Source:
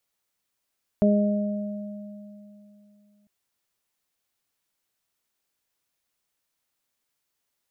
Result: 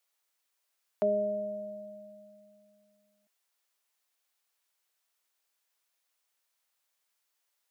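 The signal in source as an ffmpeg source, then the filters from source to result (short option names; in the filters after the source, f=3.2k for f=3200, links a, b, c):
-f lavfi -i "aevalsrc='0.15*pow(10,-3*t/3.03)*sin(2*PI*206*t)+0.0562*pow(10,-3*t/1.18)*sin(2*PI*412*t)+0.0944*pow(10,-3*t/2.53)*sin(2*PI*618*t)':d=2.25:s=44100"
-af "highpass=550"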